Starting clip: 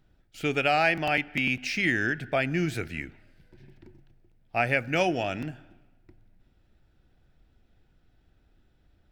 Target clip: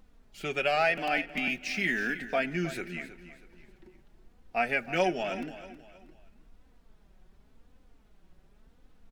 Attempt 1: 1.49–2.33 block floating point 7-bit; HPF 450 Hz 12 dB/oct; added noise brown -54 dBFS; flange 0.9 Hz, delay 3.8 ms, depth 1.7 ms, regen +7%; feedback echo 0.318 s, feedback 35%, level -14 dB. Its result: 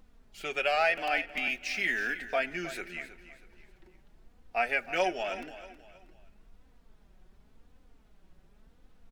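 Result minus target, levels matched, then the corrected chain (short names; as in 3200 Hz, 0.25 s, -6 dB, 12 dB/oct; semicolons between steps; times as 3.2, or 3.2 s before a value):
250 Hz band -7.0 dB
1.49–2.33 block floating point 7-bit; HPF 190 Hz 12 dB/oct; added noise brown -54 dBFS; flange 0.9 Hz, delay 3.8 ms, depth 1.7 ms, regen +7%; feedback echo 0.318 s, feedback 35%, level -14 dB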